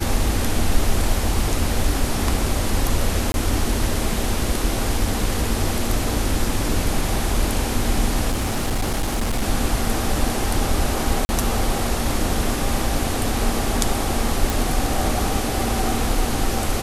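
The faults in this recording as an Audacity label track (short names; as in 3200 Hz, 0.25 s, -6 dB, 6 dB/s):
3.320000	3.340000	gap 21 ms
8.300000	9.430000	clipped -17.5 dBFS
11.250000	11.290000	gap 40 ms
14.500000	14.500000	pop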